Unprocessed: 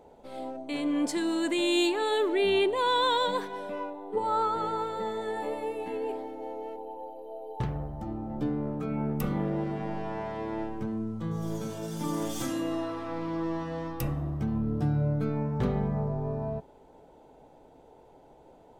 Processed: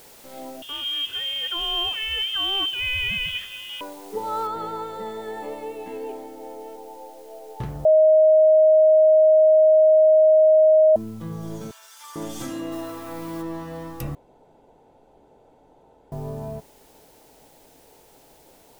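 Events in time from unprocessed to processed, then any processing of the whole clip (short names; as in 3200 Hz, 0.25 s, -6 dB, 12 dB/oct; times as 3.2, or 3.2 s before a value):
0.62–3.81 inverted band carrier 3500 Hz
4.47 noise floor step -49 dB -57 dB
7.85–10.96 bleep 626 Hz -11 dBFS
11.71–12.16 HPF 1100 Hz 24 dB/oct
12.71–13.41 high shelf 6300 Hz -> 3800 Hz +9.5 dB
14.15–16.12 room tone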